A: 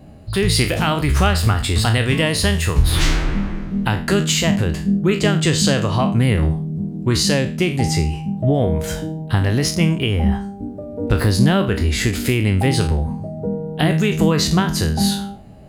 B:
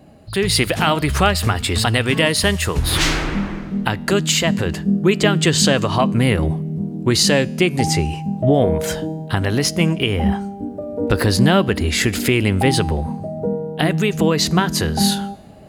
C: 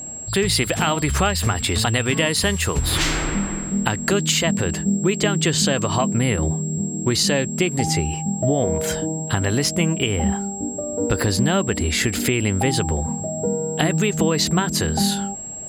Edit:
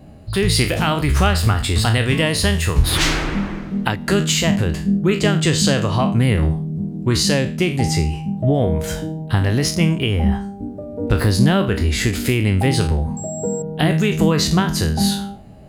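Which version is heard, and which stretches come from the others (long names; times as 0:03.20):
A
0:02.84–0:04.08: punch in from B
0:13.17–0:13.62: punch in from C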